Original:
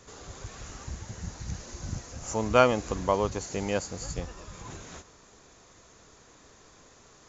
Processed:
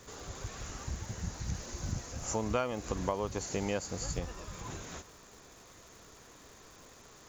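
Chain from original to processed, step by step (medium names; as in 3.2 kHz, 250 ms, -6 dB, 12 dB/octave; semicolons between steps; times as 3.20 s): compression 6:1, threshold -29 dBFS, peak gain reduction 14.5 dB; crackle 450 per s -49 dBFS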